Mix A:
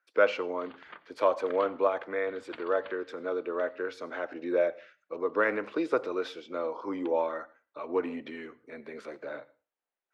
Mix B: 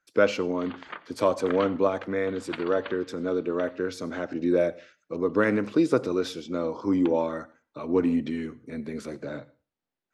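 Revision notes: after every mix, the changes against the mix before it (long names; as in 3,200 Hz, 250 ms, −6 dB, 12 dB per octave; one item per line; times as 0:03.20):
speech: remove three-way crossover with the lows and the highs turned down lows −21 dB, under 410 Hz, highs −16 dB, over 3,400 Hz
background +9.0 dB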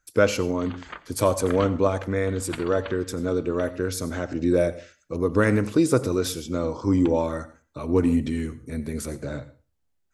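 speech: send +6.5 dB
master: remove three-way crossover with the lows and the highs turned down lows −21 dB, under 160 Hz, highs −20 dB, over 5,100 Hz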